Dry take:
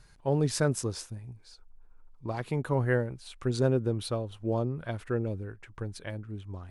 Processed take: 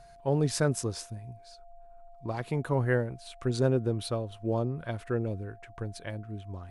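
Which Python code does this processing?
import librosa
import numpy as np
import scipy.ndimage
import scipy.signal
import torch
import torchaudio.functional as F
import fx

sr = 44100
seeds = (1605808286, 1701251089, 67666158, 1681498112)

y = x + 10.0 ** (-52.0 / 20.0) * np.sin(2.0 * np.pi * 690.0 * np.arange(len(x)) / sr)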